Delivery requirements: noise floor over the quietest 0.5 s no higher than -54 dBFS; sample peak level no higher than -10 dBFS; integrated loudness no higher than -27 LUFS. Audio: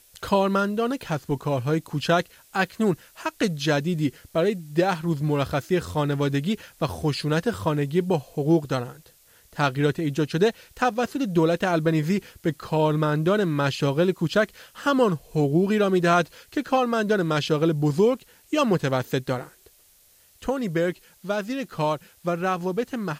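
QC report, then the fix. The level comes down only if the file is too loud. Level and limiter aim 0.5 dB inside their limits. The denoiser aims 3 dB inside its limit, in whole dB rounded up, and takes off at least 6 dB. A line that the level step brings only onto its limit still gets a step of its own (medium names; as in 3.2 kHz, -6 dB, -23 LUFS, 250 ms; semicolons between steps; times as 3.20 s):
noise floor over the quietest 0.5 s -57 dBFS: pass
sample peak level -8.0 dBFS: fail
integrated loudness -24.5 LUFS: fail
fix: trim -3 dB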